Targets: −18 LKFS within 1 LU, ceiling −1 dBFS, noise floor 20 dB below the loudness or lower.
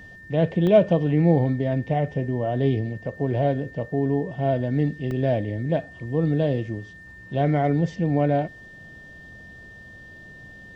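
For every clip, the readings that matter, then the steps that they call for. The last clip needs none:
number of dropouts 2; longest dropout 1.2 ms; interfering tone 1,800 Hz; level of the tone −43 dBFS; integrated loudness −23.5 LKFS; sample peak −5.5 dBFS; target loudness −18.0 LKFS
→ repair the gap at 0:00.67/0:05.11, 1.2 ms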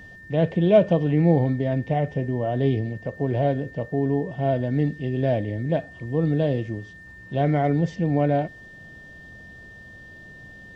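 number of dropouts 0; interfering tone 1,800 Hz; level of the tone −43 dBFS
→ notch filter 1,800 Hz, Q 30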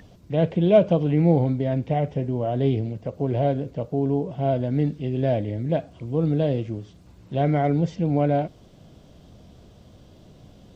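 interfering tone none found; integrated loudness −23.5 LKFS; sample peak −5.5 dBFS; target loudness −18.0 LKFS
→ level +5.5 dB
brickwall limiter −1 dBFS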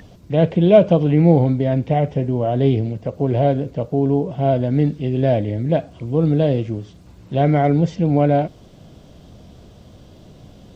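integrated loudness −18.0 LKFS; sample peak −1.0 dBFS; background noise floor −45 dBFS

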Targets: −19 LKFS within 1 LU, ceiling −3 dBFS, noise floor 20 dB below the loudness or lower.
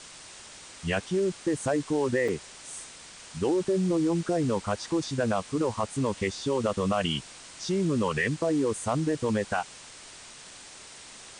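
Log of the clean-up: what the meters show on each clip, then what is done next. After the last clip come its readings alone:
number of dropouts 1; longest dropout 4.7 ms; background noise floor −47 dBFS; target noise floor −49 dBFS; integrated loudness −28.5 LKFS; sample peak −14.5 dBFS; target loudness −19.0 LKFS
→ repair the gap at 0:02.28, 4.7 ms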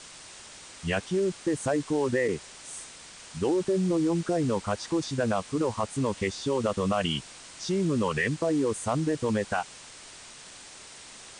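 number of dropouts 0; background noise floor −47 dBFS; target noise floor −49 dBFS
→ broadband denoise 6 dB, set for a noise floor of −47 dBFS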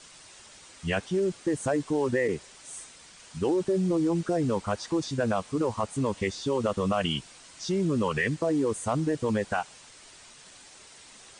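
background noise floor −51 dBFS; integrated loudness −28.5 LKFS; sample peak −14.5 dBFS; target loudness −19.0 LKFS
→ level +9.5 dB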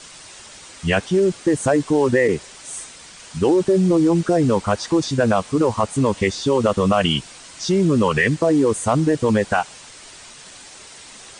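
integrated loudness −19.0 LKFS; sample peak −5.0 dBFS; background noise floor −42 dBFS

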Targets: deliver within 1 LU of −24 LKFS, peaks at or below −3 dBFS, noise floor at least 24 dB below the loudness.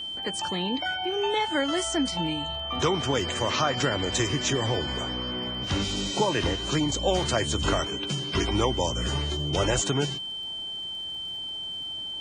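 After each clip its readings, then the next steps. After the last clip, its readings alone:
crackle rate 42 per second; interfering tone 3,100 Hz; level of the tone −32 dBFS; integrated loudness −27.0 LKFS; sample peak −11.0 dBFS; target loudness −24.0 LKFS
→ click removal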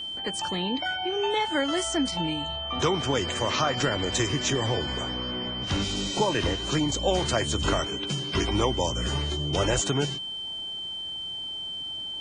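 crackle rate 0.25 per second; interfering tone 3,100 Hz; level of the tone −32 dBFS
→ notch filter 3,100 Hz, Q 30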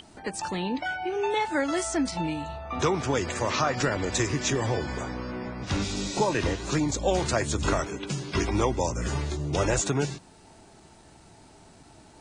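interfering tone none found; integrated loudness −28.0 LKFS; sample peak −11.5 dBFS; target loudness −24.0 LKFS
→ level +4 dB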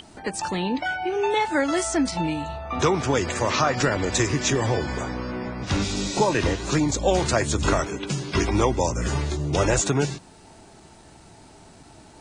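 integrated loudness −24.0 LKFS; sample peak −7.5 dBFS; background noise floor −49 dBFS

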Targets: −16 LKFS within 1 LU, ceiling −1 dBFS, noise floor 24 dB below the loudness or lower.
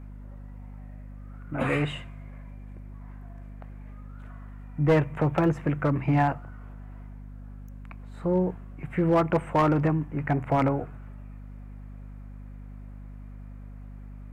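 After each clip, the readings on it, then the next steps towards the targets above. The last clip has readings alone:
share of clipped samples 0.5%; peaks flattened at −15.5 dBFS; mains hum 50 Hz; hum harmonics up to 250 Hz; level of the hum −40 dBFS; integrated loudness −26.0 LKFS; sample peak −15.5 dBFS; target loudness −16.0 LKFS
→ clipped peaks rebuilt −15.5 dBFS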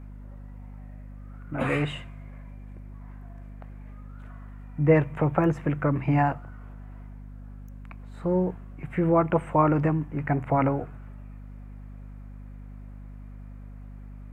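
share of clipped samples 0.0%; mains hum 50 Hz; hum harmonics up to 250 Hz; level of the hum −40 dBFS
→ mains-hum notches 50/100/150/200/250 Hz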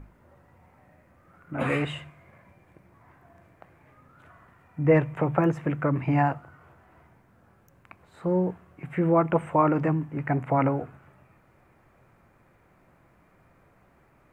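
mains hum none found; integrated loudness −25.5 LKFS; sample peak −8.5 dBFS; target loudness −16.0 LKFS
→ level +9.5 dB
brickwall limiter −1 dBFS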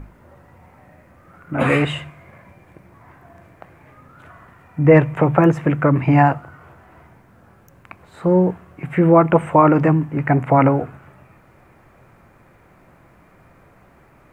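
integrated loudness −16.5 LKFS; sample peak −1.0 dBFS; background noise floor −52 dBFS

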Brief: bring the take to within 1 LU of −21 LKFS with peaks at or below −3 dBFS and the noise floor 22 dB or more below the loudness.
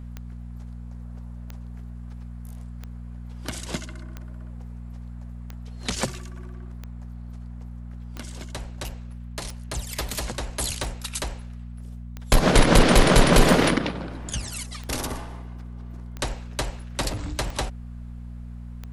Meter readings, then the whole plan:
number of clicks 15; mains hum 60 Hz; hum harmonics up to 240 Hz; level of the hum −34 dBFS; integrated loudness −24.5 LKFS; sample peak −4.0 dBFS; target loudness −21.0 LKFS
→ click removal
hum removal 60 Hz, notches 4
level +3.5 dB
brickwall limiter −3 dBFS

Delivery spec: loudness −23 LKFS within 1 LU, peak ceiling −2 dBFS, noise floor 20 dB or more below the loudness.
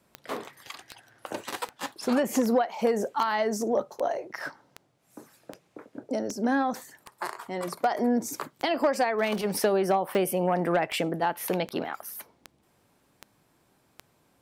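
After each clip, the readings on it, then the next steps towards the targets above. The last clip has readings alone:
number of clicks 19; integrated loudness −28.0 LKFS; sample peak −14.5 dBFS; target loudness −23.0 LKFS
→ click removal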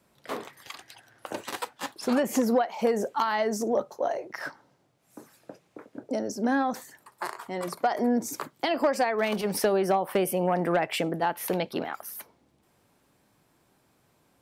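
number of clicks 0; integrated loudness −28.0 LKFS; sample peak −13.0 dBFS; target loudness −23.0 LKFS
→ level +5 dB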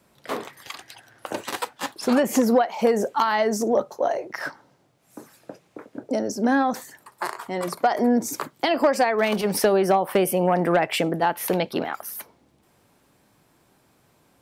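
integrated loudness −23.0 LKFS; sample peak −8.0 dBFS; background noise floor −62 dBFS

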